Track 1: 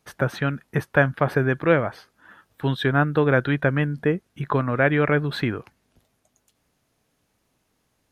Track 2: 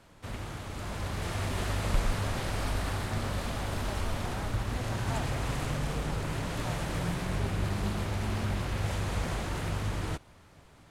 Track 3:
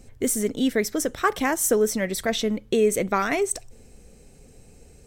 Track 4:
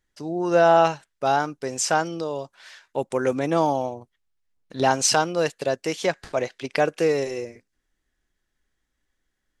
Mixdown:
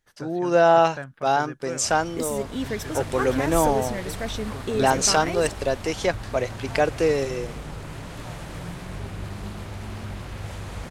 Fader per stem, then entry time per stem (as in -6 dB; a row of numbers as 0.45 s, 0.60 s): -17.5 dB, -3.0 dB, -7.0 dB, 0.0 dB; 0.00 s, 1.60 s, 1.95 s, 0.00 s